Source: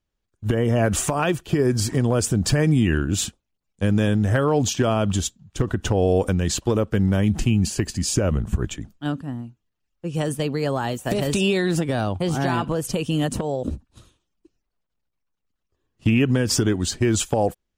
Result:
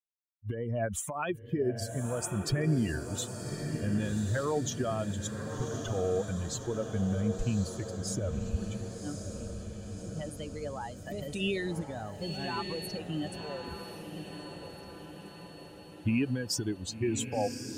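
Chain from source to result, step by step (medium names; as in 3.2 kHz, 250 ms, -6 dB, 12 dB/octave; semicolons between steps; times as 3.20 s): expander on every frequency bin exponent 2; 12.21–12.97 s: whistle 4.4 kHz -35 dBFS; echo that smears into a reverb 1113 ms, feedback 60%, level -7 dB; trim -7 dB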